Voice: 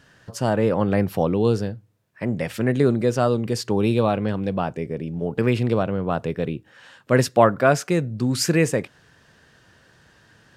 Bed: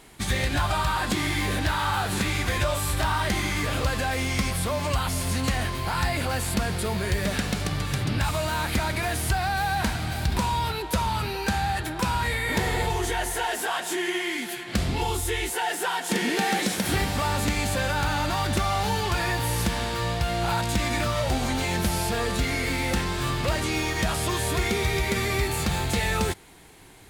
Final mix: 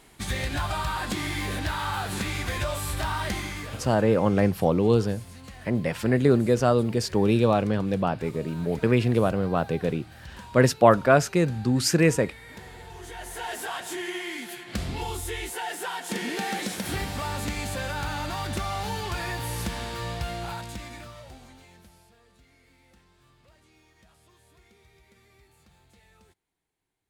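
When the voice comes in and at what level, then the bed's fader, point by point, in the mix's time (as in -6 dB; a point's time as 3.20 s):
3.45 s, -1.0 dB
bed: 3.31 s -4 dB
4.18 s -19 dB
12.84 s -19 dB
13.51 s -5.5 dB
20.26 s -5.5 dB
22.20 s -34 dB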